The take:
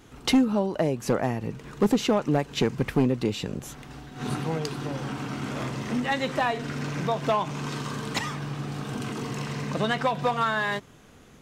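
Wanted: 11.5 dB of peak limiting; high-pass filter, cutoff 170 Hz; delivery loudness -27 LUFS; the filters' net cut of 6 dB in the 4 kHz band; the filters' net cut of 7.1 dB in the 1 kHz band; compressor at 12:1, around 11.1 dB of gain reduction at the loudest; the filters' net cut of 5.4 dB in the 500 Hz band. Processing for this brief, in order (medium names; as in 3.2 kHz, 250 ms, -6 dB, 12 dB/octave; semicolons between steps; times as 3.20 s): high-pass 170 Hz; peaking EQ 500 Hz -4.5 dB; peaking EQ 1 kHz -7.5 dB; peaking EQ 4 kHz -7.5 dB; compression 12:1, threshold -29 dBFS; trim +12.5 dB; peak limiter -17.5 dBFS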